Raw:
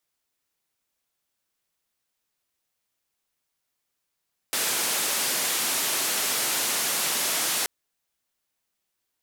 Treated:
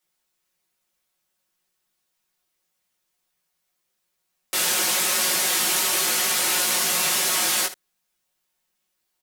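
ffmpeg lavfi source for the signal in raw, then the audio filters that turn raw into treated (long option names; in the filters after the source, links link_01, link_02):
-f lavfi -i "anoisesrc=color=white:duration=3.13:sample_rate=44100:seed=1,highpass=frequency=220,lowpass=frequency=13000,volume=-18.8dB"
-filter_complex "[0:a]aecho=1:1:5.5:0.78,asplit=2[link_01][link_02];[link_02]aecho=0:1:18|75:0.668|0.211[link_03];[link_01][link_03]amix=inputs=2:normalize=0"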